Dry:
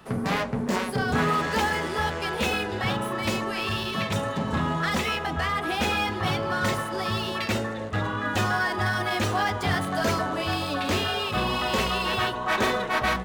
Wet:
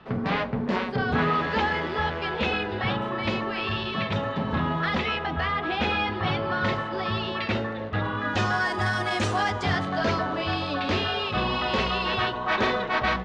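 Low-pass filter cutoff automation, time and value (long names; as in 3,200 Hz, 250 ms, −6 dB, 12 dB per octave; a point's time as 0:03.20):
low-pass filter 24 dB per octave
0:08.07 4,100 Hz
0:08.73 8,600 Hz
0:09.40 8,600 Hz
0:09.96 4,800 Hz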